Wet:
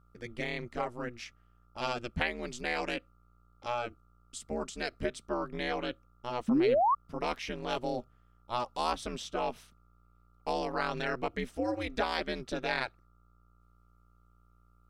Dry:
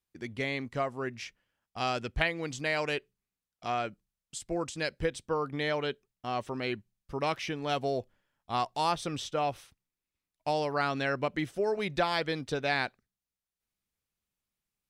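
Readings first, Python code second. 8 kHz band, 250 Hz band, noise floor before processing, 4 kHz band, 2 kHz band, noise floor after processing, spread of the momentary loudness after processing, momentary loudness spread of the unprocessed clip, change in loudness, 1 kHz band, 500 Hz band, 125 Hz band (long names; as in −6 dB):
−3.0 dB, +1.0 dB, below −85 dBFS, −3.0 dB, −3.0 dB, −64 dBFS, 11 LU, 10 LU, −1.5 dB, −1.0 dB, −1.5 dB, −5.5 dB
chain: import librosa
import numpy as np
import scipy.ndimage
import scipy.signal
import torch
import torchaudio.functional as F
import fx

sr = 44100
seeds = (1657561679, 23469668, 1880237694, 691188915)

y = fx.dmg_buzz(x, sr, base_hz=60.0, harmonics=21, level_db=-57.0, tilt_db=-2, odd_only=False)
y = y * np.sin(2.0 * np.pi * 120.0 * np.arange(len(y)) / sr)
y = fx.spec_paint(y, sr, seeds[0], shape='rise', start_s=6.48, length_s=0.47, low_hz=210.0, high_hz=1200.0, level_db=-25.0)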